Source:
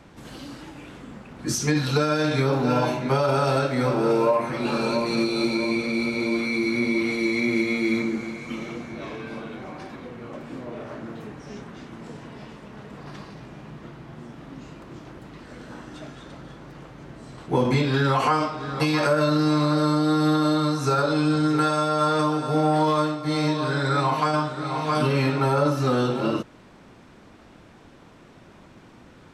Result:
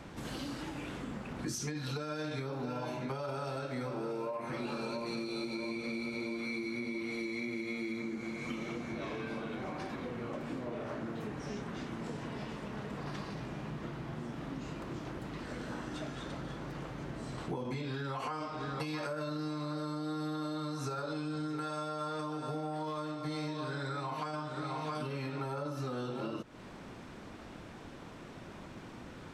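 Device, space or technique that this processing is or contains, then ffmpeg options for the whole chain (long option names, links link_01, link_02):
serial compression, leveller first: -af "acompressor=threshold=-23dB:ratio=2.5,acompressor=threshold=-37dB:ratio=6,volume=1dB"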